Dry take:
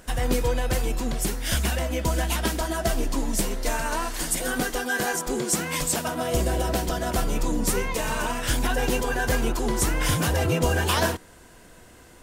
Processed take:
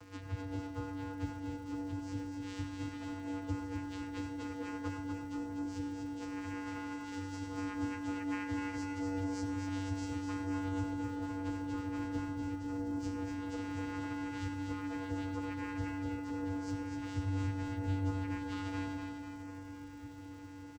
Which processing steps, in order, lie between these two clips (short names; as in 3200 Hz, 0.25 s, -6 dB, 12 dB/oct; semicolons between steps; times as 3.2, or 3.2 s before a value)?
minimum comb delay 0.68 ms; compressor 6:1, threshold -38 dBFS, peak gain reduction 18 dB; bit-crush 10-bit; vocoder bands 8, square 95.8 Hz; plain phase-vocoder stretch 1.7×; crackle 250/s -61 dBFS; feedback echo 0.247 s, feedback 59%, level -5 dB; on a send at -9 dB: reverb RT60 0.30 s, pre-delay 82 ms; on the sum: gain +4 dB